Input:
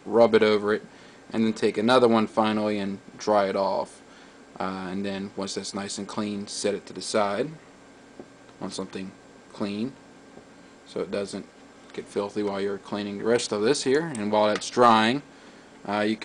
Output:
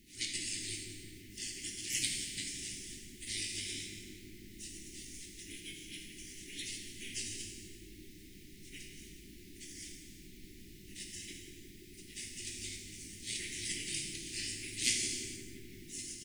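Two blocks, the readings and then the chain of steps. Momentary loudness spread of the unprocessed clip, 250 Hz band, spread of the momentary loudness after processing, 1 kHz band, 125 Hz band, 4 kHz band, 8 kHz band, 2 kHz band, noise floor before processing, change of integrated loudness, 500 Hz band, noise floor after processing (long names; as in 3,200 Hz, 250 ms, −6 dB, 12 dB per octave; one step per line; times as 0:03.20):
15 LU, −23.0 dB, 18 LU, below −40 dB, −14.5 dB, −6.0 dB, +1.0 dB, −12.0 dB, −51 dBFS, −14.5 dB, −33.5 dB, −54 dBFS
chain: rotating-speaker cabinet horn 7.5 Hz
first-order pre-emphasis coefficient 0.97
gate on every frequency bin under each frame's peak −25 dB weak
background noise pink −77 dBFS
Chebyshev band-stop filter 350–2,000 Hz, order 4
delay with a low-pass on its return 172 ms, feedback 75%, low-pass 1,100 Hz, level −4.5 dB
automatic gain control gain up to 5.5 dB
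parametric band 470 Hz +10 dB 1.8 octaves
double-tracking delay 20 ms −11 dB
reverb whose tail is shaped and stops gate 500 ms falling, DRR 1 dB
level +13 dB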